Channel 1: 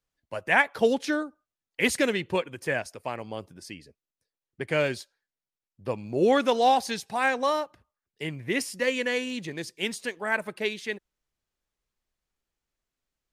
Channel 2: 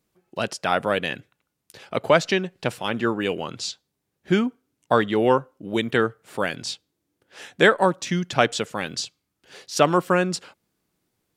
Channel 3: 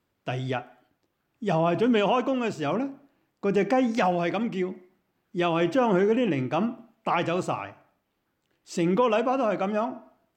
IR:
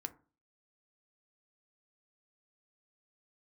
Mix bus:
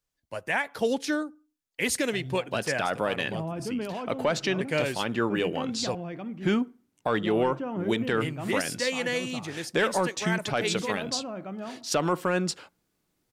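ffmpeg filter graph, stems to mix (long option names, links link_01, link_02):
-filter_complex "[0:a]bass=frequency=250:gain=1,treble=frequency=4000:gain=5,volume=-3dB,asplit=3[link_01][link_02][link_03];[link_01]atrim=end=5.95,asetpts=PTS-STARTPTS,afade=type=out:start_time=5.946:duration=0.004:curve=hsin[link_04];[link_02]atrim=start=5.95:end=8.12,asetpts=PTS-STARTPTS,volume=0[link_05];[link_03]atrim=start=8.12,asetpts=PTS-STARTPTS,afade=type=in:duration=0.004:curve=hsin[link_06];[link_04][link_05][link_06]concat=n=3:v=0:a=1,asplit=3[link_07][link_08][link_09];[link_08]volume=-13dB[link_10];[1:a]acontrast=33,adelay=2150,volume=-9dB,asplit=2[link_11][link_12];[link_12]volume=-9dB[link_13];[2:a]bass=frequency=250:gain=9,treble=frequency=4000:gain=-10,adelay=1850,volume=-13dB[link_14];[link_09]apad=whole_len=538627[link_15];[link_14][link_15]sidechaincompress=threshold=-30dB:ratio=8:attack=16:release=135[link_16];[3:a]atrim=start_sample=2205[link_17];[link_10][link_13]amix=inputs=2:normalize=0[link_18];[link_18][link_17]afir=irnorm=-1:irlink=0[link_19];[link_07][link_11][link_16][link_19]amix=inputs=4:normalize=0,alimiter=limit=-15dB:level=0:latency=1:release=71"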